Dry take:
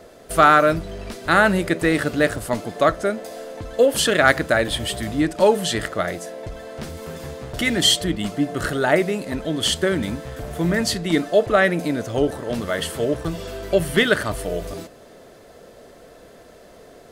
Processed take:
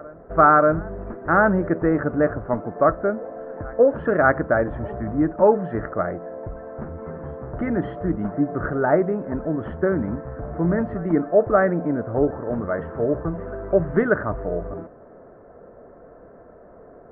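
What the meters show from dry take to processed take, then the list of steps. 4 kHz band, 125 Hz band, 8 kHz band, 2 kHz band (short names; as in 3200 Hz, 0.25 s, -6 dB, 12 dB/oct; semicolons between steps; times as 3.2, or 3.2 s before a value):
under -40 dB, 0.0 dB, under -40 dB, -5.5 dB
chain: steep low-pass 1500 Hz 36 dB/oct; reverse echo 0.588 s -24 dB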